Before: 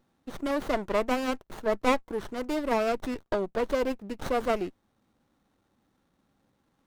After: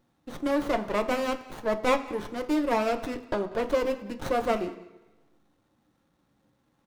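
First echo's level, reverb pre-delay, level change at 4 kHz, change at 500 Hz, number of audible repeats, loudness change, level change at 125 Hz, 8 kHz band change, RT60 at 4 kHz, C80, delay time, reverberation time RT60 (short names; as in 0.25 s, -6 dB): -21.0 dB, 3 ms, +0.5 dB, +1.0 dB, 1, +1.0 dB, +1.5 dB, +0.5 dB, 1.0 s, 14.5 dB, 0.192 s, 1.0 s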